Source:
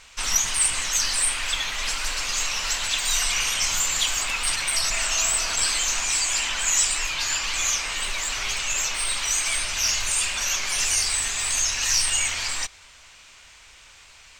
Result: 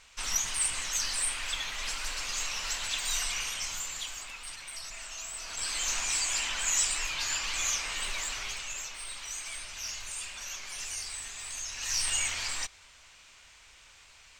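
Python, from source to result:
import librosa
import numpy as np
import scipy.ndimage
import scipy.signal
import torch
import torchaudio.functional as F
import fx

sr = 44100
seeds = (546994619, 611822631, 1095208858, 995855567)

y = fx.gain(x, sr, db=fx.line((3.16, -8.0), (4.47, -18.0), (5.31, -18.0), (5.89, -6.5), (8.2, -6.5), (8.92, -15.0), (11.66, -15.0), (12.09, -6.5)))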